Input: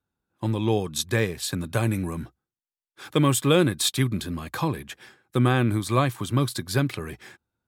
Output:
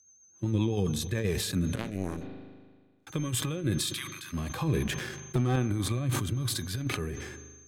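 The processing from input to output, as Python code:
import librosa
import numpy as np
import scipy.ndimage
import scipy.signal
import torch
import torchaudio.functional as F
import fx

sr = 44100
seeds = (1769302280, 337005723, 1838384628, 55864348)

y = fx.steep_highpass(x, sr, hz=1000.0, slope=36, at=(3.8, 4.32), fade=0.02)
y = fx.hpss(y, sr, part='percussive', gain_db=-13)
y = fx.over_compress(y, sr, threshold_db=-27.0, ratio=-0.5)
y = fx.leveller(y, sr, passes=3, at=(4.85, 5.56))
y = y + 10.0 ** (-55.0 / 20.0) * np.sin(2.0 * np.pi * 6300.0 * np.arange(len(y)) / sr)
y = fx.power_curve(y, sr, exponent=3.0, at=(1.75, 3.07))
y = fx.rotary_switch(y, sr, hz=7.5, then_hz=0.85, switch_at_s=1.61)
y = fx.rev_spring(y, sr, rt60_s=2.6, pass_ms=(39,), chirp_ms=60, drr_db=18.5)
y = fx.sustainer(y, sr, db_per_s=37.0)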